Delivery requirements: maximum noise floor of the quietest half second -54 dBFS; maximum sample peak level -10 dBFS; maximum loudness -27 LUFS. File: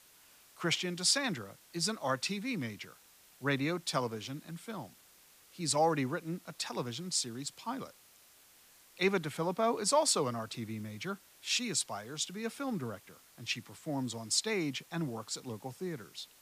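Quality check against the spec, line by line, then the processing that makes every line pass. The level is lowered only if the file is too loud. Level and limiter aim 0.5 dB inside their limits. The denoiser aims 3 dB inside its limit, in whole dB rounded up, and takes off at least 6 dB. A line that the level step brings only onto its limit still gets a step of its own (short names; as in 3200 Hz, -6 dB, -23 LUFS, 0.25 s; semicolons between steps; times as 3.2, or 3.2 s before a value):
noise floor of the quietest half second -62 dBFS: OK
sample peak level -14.5 dBFS: OK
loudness -34.5 LUFS: OK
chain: none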